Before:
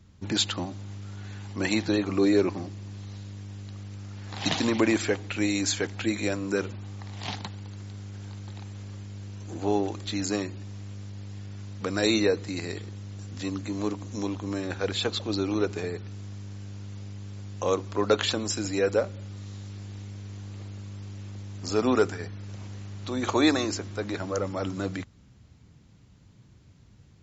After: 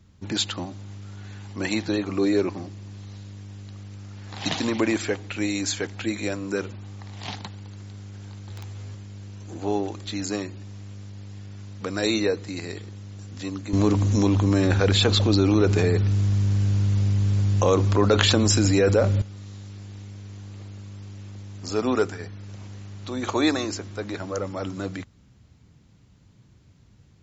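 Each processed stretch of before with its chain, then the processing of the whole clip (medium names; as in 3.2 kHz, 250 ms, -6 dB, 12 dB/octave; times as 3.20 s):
8.49–8.95 s: doubling 12 ms -2 dB + integer overflow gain 29.5 dB
13.73–19.22 s: bass shelf 140 Hz +11.5 dB + level flattener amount 70%
whole clip: none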